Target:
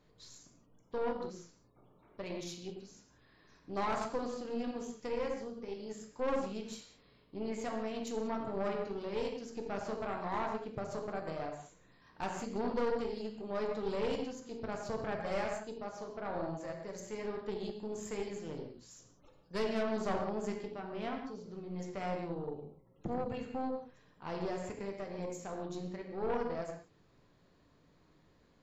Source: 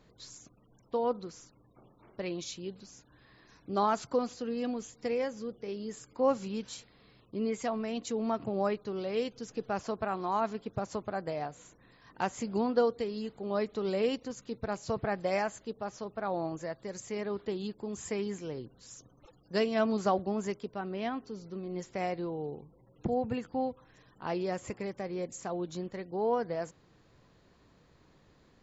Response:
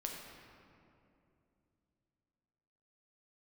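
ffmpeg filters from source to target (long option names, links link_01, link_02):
-filter_complex "[1:a]atrim=start_sample=2205,afade=type=out:start_time=0.25:duration=0.01,atrim=end_sample=11466[link_01];[0:a][link_01]afir=irnorm=-1:irlink=0,aeval=exprs='(tanh(25.1*val(0)+0.65)-tanh(0.65))/25.1':channel_layout=same"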